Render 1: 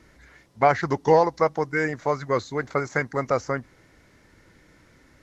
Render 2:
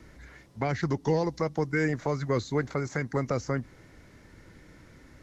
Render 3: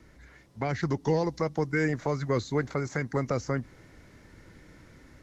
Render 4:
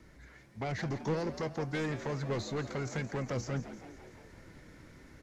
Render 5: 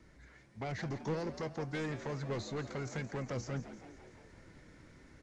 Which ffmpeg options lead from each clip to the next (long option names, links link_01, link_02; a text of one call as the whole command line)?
ffmpeg -i in.wav -filter_complex "[0:a]lowshelf=frequency=350:gain=5.5,acrossover=split=380|2200[link_01][link_02][link_03];[link_02]acompressor=threshold=-29dB:ratio=6[link_04];[link_01][link_04][link_03]amix=inputs=3:normalize=0,alimiter=limit=-16.5dB:level=0:latency=1:release=191" out.wav
ffmpeg -i in.wav -af "dynaudnorm=framelen=400:gausssize=3:maxgain=4dB,volume=-4dB" out.wav
ffmpeg -i in.wav -filter_complex "[0:a]asoftclip=type=tanh:threshold=-28.5dB,flanger=delay=4.9:depth=3.5:regen=85:speed=1.6:shape=sinusoidal,asplit=2[link_01][link_02];[link_02]asplit=6[link_03][link_04][link_05][link_06][link_07][link_08];[link_03]adelay=169,afreqshift=77,volume=-13dB[link_09];[link_04]adelay=338,afreqshift=154,volume=-17.6dB[link_10];[link_05]adelay=507,afreqshift=231,volume=-22.2dB[link_11];[link_06]adelay=676,afreqshift=308,volume=-26.7dB[link_12];[link_07]adelay=845,afreqshift=385,volume=-31.3dB[link_13];[link_08]adelay=1014,afreqshift=462,volume=-35.9dB[link_14];[link_09][link_10][link_11][link_12][link_13][link_14]amix=inputs=6:normalize=0[link_15];[link_01][link_15]amix=inputs=2:normalize=0,volume=3dB" out.wav
ffmpeg -i in.wav -af "aresample=22050,aresample=44100,volume=-3.5dB" out.wav